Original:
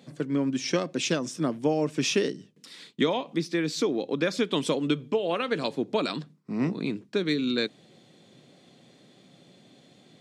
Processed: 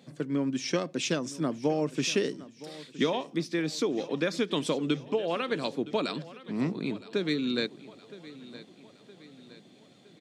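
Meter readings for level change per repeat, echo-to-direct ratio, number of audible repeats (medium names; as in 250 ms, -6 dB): -6.0 dB, -16.5 dB, 3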